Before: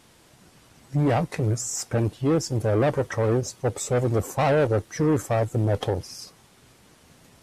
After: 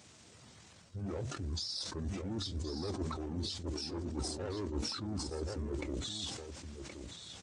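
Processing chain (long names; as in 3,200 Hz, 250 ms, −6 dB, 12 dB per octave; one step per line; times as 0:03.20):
spectral magnitudes quantised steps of 15 dB
high-pass filter 100 Hz 24 dB per octave
high-shelf EQ 7,100 Hz +8 dB
reversed playback
downward compressor 16 to 1, threshold −32 dBFS, peak gain reduction 16 dB
reversed playback
flanger 1.4 Hz, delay 5.2 ms, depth 6.7 ms, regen −80%
pitch shifter −6.5 semitones
on a send: single-tap delay 1,072 ms −9 dB
on the sum: level that may fall only so fast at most 41 dB per second
level +1 dB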